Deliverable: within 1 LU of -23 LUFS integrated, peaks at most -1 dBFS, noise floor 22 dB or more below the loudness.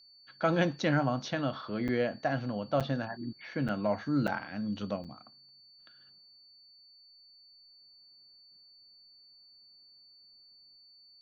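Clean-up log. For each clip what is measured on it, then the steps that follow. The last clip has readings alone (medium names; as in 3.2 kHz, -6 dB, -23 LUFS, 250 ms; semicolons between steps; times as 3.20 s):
dropouts 5; longest dropout 7.1 ms; steady tone 4.5 kHz; tone level -56 dBFS; loudness -32.0 LUFS; peak level -14.0 dBFS; loudness target -23.0 LUFS
-> interpolate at 1.88/2.80/3.68/4.27/5.04 s, 7.1 ms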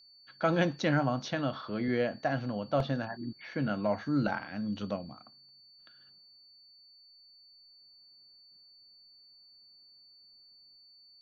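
dropouts 0; steady tone 4.5 kHz; tone level -56 dBFS
-> band-stop 4.5 kHz, Q 30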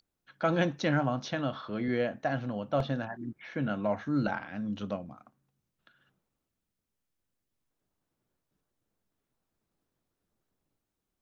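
steady tone not found; loudness -32.0 LUFS; peak level -14.5 dBFS; loudness target -23.0 LUFS
-> trim +9 dB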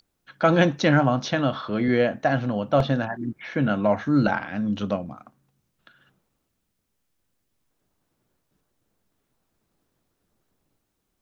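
loudness -23.0 LUFS; peak level -5.5 dBFS; noise floor -76 dBFS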